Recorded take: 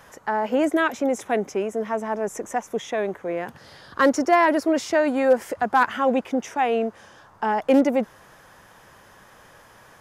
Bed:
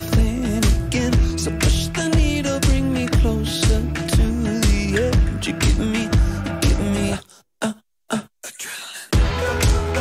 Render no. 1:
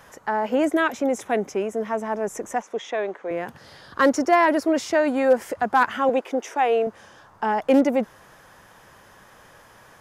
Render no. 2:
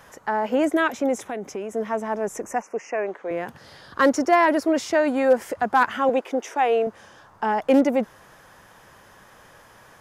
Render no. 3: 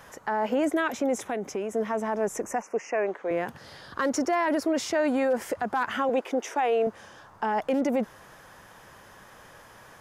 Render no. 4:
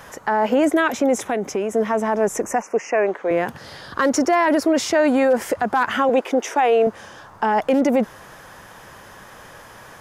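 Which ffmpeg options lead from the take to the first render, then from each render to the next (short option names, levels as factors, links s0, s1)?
-filter_complex "[0:a]asettb=1/sr,asplit=3[s0][s1][s2];[s0]atrim=end=2.624[s3];[s1]atrim=start=2.62:end=3.31,asetpts=PTS-STARTPTS,afade=t=in:d=0.004:c=qsin,afade=t=out:st=0.686:d=0.004:c=qsin,highpass=330,lowpass=5600[s4];[s2]atrim=start=3.306[s5];[s3][s4]acrossfade=d=0.004:c1=hsin:c2=qsin[s6];[s6][s5]acrossfade=d=0.004:c1=qsin:c2=hsin,asettb=1/sr,asplit=3[s7][s8][s9];[s7]atrim=end=6.094[s10];[s8]atrim=start=6.09:end=6.87,asetpts=PTS-STARTPTS,afade=t=in:d=0.004:c=qsin,afade=t=out:st=0.776:d=0.004:c=qsin,lowshelf=f=240:t=q:w=1.5:g=-13.5[s11];[s9]atrim=start=6.866[s12];[s10][s11]acrossfade=d=0.004:c1=hsin:c2=qsin[s13];[s13][s12]acrossfade=d=0.004:c1=qsin:c2=hsin"
-filter_complex "[0:a]asettb=1/sr,asplit=3[s0][s1][s2];[s0]atrim=end=1.244[s3];[s1]atrim=start=1.24:end=1.71,asetpts=PTS-STARTPTS,afade=t=in:d=0.004:c=qsin,afade=t=out:st=0.466:d=0.004:c=qsin,acompressor=threshold=0.0447:ratio=4:attack=3.2:release=140:knee=1:detection=peak[s4];[s2]atrim=start=1.706[s5];[s3][s4]acrossfade=d=0.004:c1=hsin:c2=qsin[s6];[s6][s5]acrossfade=d=0.004:c1=qsin:c2=hsin,asettb=1/sr,asplit=3[s7][s8][s9];[s7]atrim=end=2.424[s10];[s8]atrim=start=2.42:end=3.07,asetpts=PTS-STARTPTS,afade=t=in:d=0.004:c=qsin,afade=t=out:st=0.646:d=0.004:c=qsin,asuperstop=centerf=3700:order=12:qfactor=2[s11];[s9]atrim=start=3.066[s12];[s10][s11]acrossfade=d=0.004:c1=hsin:c2=qsin[s13];[s13][s12]acrossfade=d=0.004:c1=qsin:c2=hsin"
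-af "alimiter=limit=0.133:level=0:latency=1:release=45"
-af "volume=2.51"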